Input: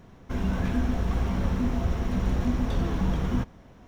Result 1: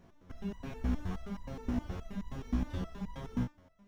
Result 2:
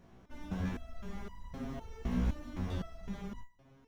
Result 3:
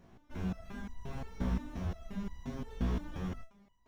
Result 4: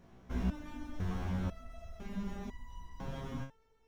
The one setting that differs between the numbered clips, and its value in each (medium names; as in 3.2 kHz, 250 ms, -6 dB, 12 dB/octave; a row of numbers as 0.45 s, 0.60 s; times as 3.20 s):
resonator arpeggio, rate: 9.5 Hz, 3.9 Hz, 5.7 Hz, 2 Hz